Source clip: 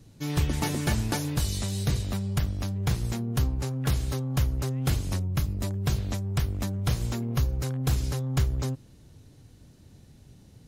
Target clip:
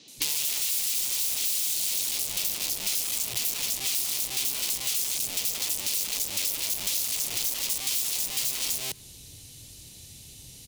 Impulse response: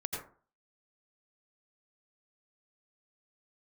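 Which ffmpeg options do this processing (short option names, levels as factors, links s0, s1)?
-filter_complex "[0:a]acrossover=split=210|5100[s0][s1][s2];[s2]adelay=80[s3];[s0]adelay=170[s4];[s4][s1][s3]amix=inputs=3:normalize=0,aeval=exprs='(mod(39.8*val(0)+1,2)-1)/39.8':c=same,aexciter=amount=4.6:drive=8.9:freq=2300,acompressor=threshold=0.0562:ratio=6,asplit=2[s5][s6];[1:a]atrim=start_sample=2205[s7];[s6][s7]afir=irnorm=-1:irlink=0,volume=0.0631[s8];[s5][s8]amix=inputs=2:normalize=0"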